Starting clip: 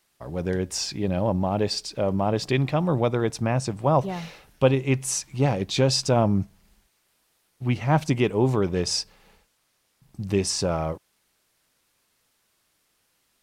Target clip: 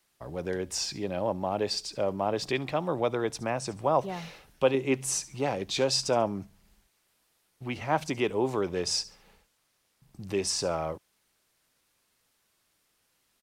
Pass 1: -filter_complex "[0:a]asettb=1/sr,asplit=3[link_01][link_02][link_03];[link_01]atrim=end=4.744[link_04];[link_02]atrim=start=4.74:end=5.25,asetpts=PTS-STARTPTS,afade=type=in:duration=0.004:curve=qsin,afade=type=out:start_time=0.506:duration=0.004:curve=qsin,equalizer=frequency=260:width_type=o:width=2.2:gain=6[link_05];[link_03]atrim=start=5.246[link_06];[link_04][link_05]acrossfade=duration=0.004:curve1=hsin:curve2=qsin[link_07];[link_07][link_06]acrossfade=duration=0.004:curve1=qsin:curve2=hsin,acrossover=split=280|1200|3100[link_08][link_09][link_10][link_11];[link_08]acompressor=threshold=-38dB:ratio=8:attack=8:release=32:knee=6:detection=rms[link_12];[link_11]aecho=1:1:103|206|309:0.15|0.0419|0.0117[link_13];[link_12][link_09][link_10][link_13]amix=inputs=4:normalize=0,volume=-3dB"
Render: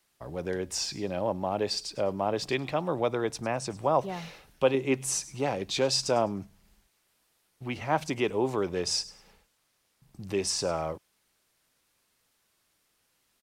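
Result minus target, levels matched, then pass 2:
echo 33 ms late
-filter_complex "[0:a]asettb=1/sr,asplit=3[link_01][link_02][link_03];[link_01]atrim=end=4.744[link_04];[link_02]atrim=start=4.74:end=5.25,asetpts=PTS-STARTPTS,afade=type=in:duration=0.004:curve=qsin,afade=type=out:start_time=0.506:duration=0.004:curve=qsin,equalizer=frequency=260:width_type=o:width=2.2:gain=6[link_05];[link_03]atrim=start=5.246[link_06];[link_04][link_05]acrossfade=duration=0.004:curve1=hsin:curve2=qsin[link_07];[link_07][link_06]acrossfade=duration=0.004:curve1=qsin:curve2=hsin,acrossover=split=280|1200|3100[link_08][link_09][link_10][link_11];[link_08]acompressor=threshold=-38dB:ratio=8:attack=8:release=32:knee=6:detection=rms[link_12];[link_11]aecho=1:1:70|140|210:0.15|0.0419|0.0117[link_13];[link_12][link_09][link_10][link_13]amix=inputs=4:normalize=0,volume=-3dB"

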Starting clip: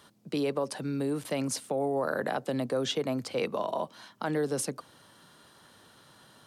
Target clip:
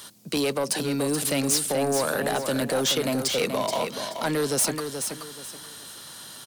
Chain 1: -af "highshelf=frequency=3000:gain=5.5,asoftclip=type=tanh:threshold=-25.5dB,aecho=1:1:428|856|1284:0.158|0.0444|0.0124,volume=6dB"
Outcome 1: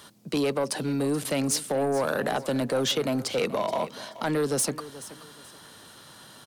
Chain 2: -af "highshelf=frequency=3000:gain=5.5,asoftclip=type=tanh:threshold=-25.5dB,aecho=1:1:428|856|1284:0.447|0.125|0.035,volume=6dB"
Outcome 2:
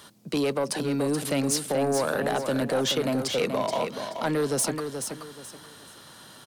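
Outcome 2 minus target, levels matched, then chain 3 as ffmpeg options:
8,000 Hz band −3.0 dB
-af "highshelf=frequency=3000:gain=16.5,asoftclip=type=tanh:threshold=-25.5dB,aecho=1:1:428|856|1284:0.447|0.125|0.035,volume=6dB"

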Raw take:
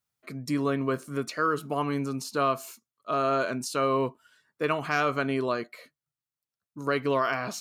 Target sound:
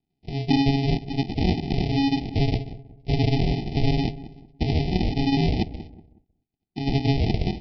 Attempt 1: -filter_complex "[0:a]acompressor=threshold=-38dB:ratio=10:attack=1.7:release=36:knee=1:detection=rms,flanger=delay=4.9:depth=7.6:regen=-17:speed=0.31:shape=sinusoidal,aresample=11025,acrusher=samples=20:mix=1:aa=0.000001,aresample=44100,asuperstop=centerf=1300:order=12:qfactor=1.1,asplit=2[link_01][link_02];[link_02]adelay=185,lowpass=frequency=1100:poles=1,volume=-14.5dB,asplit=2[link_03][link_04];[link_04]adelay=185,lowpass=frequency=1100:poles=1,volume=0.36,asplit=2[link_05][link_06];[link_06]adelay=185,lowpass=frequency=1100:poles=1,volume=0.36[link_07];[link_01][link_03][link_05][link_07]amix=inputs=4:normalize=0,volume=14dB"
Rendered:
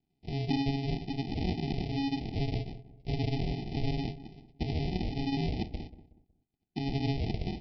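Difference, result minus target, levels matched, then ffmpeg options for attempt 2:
downward compressor: peak gain reduction +10 dB
-filter_complex "[0:a]acompressor=threshold=-27dB:ratio=10:attack=1.7:release=36:knee=1:detection=rms,flanger=delay=4.9:depth=7.6:regen=-17:speed=0.31:shape=sinusoidal,aresample=11025,acrusher=samples=20:mix=1:aa=0.000001,aresample=44100,asuperstop=centerf=1300:order=12:qfactor=1.1,asplit=2[link_01][link_02];[link_02]adelay=185,lowpass=frequency=1100:poles=1,volume=-14.5dB,asplit=2[link_03][link_04];[link_04]adelay=185,lowpass=frequency=1100:poles=1,volume=0.36,asplit=2[link_05][link_06];[link_06]adelay=185,lowpass=frequency=1100:poles=1,volume=0.36[link_07];[link_01][link_03][link_05][link_07]amix=inputs=4:normalize=0,volume=14dB"

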